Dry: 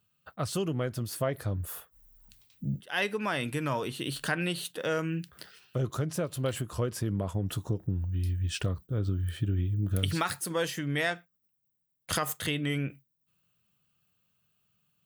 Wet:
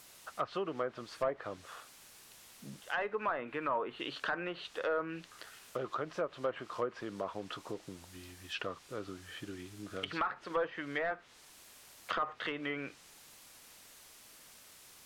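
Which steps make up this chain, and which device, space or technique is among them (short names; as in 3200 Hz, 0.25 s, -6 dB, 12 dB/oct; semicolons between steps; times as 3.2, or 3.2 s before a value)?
drive-through speaker (BPF 450–3300 Hz; bell 1200 Hz +5.5 dB 0.39 oct; hard clip -24.5 dBFS, distortion -13 dB; white noise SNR 16 dB); treble ducked by the level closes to 1300 Hz, closed at -29.5 dBFS; 3.32–4 bell 5600 Hz -8.5 dB 1.1 oct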